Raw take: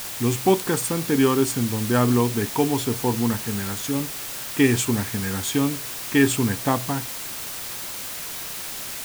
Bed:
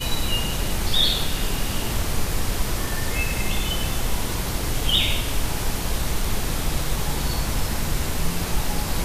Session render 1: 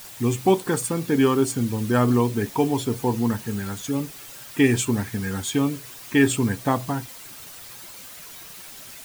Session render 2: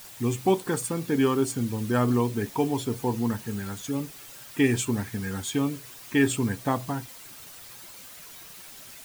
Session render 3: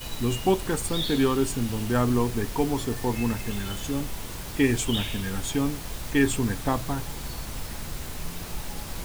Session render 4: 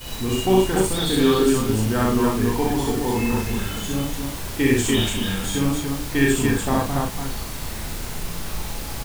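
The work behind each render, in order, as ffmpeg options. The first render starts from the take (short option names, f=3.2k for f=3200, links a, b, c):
-af "afftdn=nr=10:nf=-33"
-af "volume=-4dB"
-filter_complex "[1:a]volume=-11dB[a];[0:a][a]amix=inputs=2:normalize=0"
-filter_complex "[0:a]asplit=2[a][b];[b]adelay=37,volume=-4.5dB[c];[a][c]amix=inputs=2:normalize=0,aecho=1:1:64.14|288.6:1|0.708"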